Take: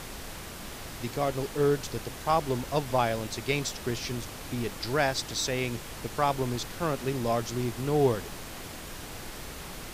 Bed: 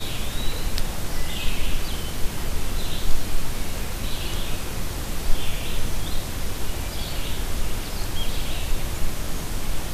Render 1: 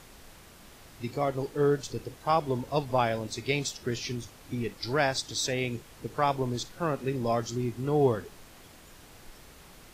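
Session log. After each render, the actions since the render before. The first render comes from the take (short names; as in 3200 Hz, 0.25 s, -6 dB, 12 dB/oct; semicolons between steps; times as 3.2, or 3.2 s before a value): noise print and reduce 11 dB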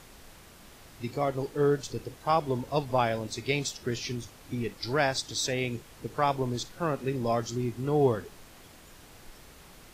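nothing audible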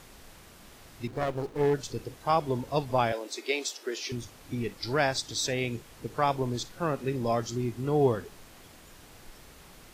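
1.07–1.74 running maximum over 17 samples; 3.12–4.12 steep high-pass 300 Hz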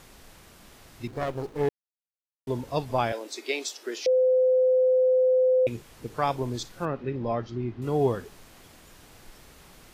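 1.69–2.47 mute; 4.06–5.67 bleep 512 Hz -17.5 dBFS; 6.85–7.82 air absorption 290 m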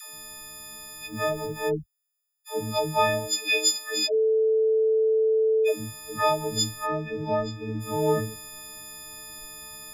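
frequency quantiser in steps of 6 st; dispersion lows, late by 0.147 s, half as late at 340 Hz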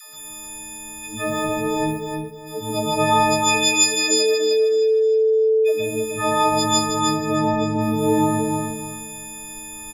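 feedback echo 0.309 s, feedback 28%, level -4.5 dB; plate-style reverb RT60 0.66 s, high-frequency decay 1×, pre-delay 0.11 s, DRR -5.5 dB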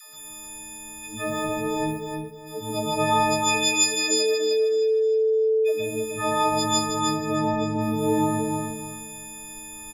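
gain -4 dB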